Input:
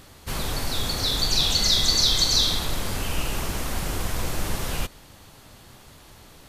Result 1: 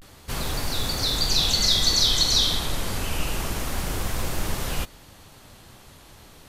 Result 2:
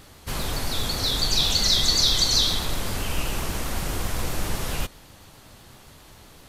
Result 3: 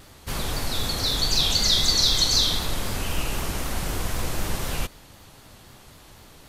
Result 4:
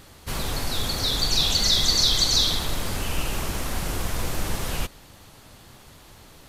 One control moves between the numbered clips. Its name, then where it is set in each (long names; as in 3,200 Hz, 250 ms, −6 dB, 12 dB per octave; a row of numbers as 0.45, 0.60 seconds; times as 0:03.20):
pitch vibrato, speed: 0.3, 7.7, 3.9, 15 Hertz